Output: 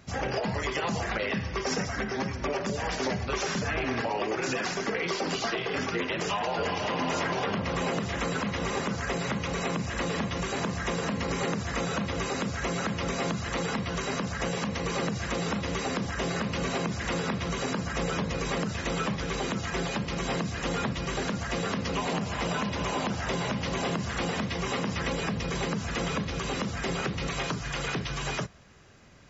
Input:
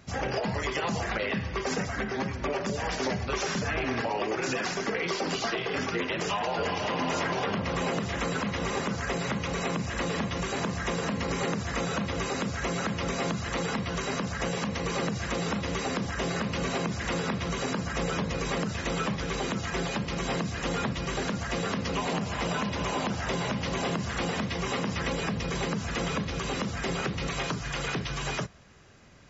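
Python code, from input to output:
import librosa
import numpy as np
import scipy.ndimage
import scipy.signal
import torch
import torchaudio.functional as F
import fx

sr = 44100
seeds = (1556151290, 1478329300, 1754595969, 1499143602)

y = fx.peak_eq(x, sr, hz=5500.0, db=7.5, octaves=0.2, at=(1.23, 2.57))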